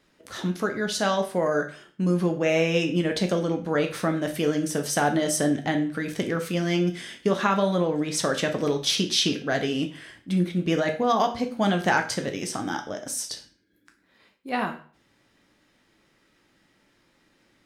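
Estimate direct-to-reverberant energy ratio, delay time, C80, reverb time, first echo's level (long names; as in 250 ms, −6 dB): 4.0 dB, no echo audible, 16.0 dB, 0.45 s, no echo audible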